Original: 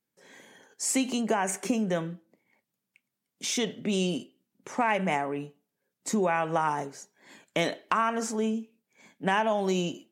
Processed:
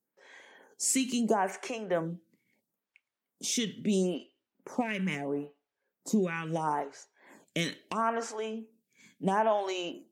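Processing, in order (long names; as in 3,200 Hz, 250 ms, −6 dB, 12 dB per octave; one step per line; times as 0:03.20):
0:04.14–0:06.46: parametric band 8,300 Hz −7 dB 0.67 octaves
phaser with staggered stages 0.75 Hz
level +1 dB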